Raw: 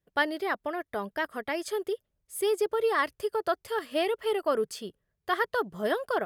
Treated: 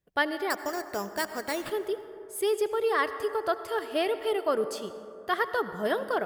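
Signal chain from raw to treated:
0:00.50–0:01.72: sample-rate reduction 6,300 Hz, jitter 0%
on a send: convolution reverb RT60 2.6 s, pre-delay 67 ms, DRR 11 dB

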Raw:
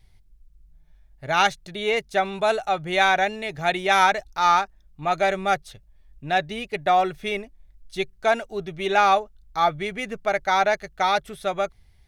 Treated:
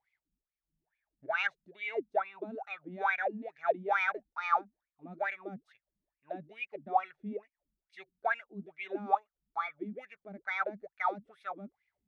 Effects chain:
LFO wah 2.3 Hz 200–2,400 Hz, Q 11
level +1 dB

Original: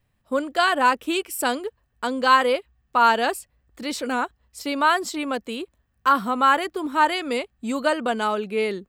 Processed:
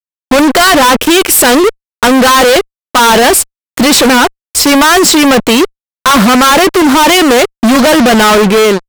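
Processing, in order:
fade-out on the ending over 0.54 s
0:06.64–0:07.56: high-pass filter 220 Hz 12 dB per octave
fuzz pedal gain 44 dB, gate −46 dBFS
level +8.5 dB

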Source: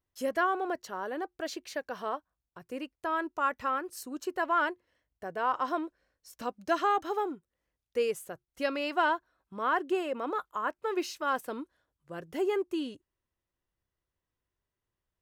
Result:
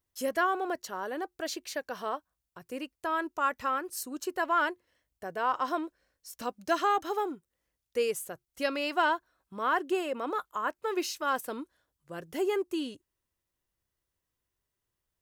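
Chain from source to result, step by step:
high-shelf EQ 4,500 Hz +8 dB

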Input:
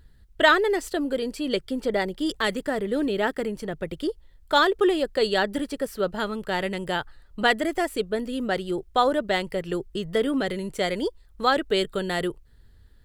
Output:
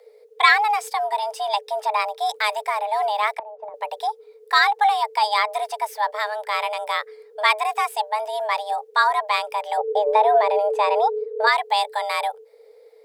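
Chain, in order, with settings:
0:09.77–0:11.47: RIAA equalisation playback
frequency shifter +420 Hz
0:03.34–0:03.74: treble cut that deepens with the level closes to 380 Hz, closed at −27 dBFS
level +2.5 dB

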